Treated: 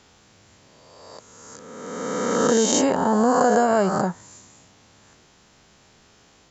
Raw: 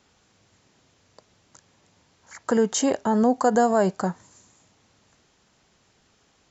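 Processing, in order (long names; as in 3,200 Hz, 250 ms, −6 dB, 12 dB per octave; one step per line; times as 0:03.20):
peak hold with a rise ahead of every peak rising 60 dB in 1.69 s
in parallel at +3 dB: downward compressor, threshold −29 dBFS, peak gain reduction 15 dB
on the sum: level −3 dB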